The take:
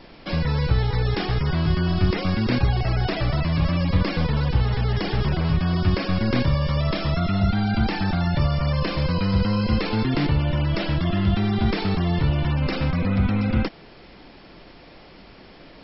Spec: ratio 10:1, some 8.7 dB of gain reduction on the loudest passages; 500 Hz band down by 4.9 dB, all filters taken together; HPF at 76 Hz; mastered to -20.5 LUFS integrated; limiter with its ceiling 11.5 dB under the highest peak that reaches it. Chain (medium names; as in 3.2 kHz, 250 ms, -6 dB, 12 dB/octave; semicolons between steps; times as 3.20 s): high-pass 76 Hz; peaking EQ 500 Hz -6.5 dB; compression 10:1, threshold -26 dBFS; trim +16.5 dB; peak limiter -12.5 dBFS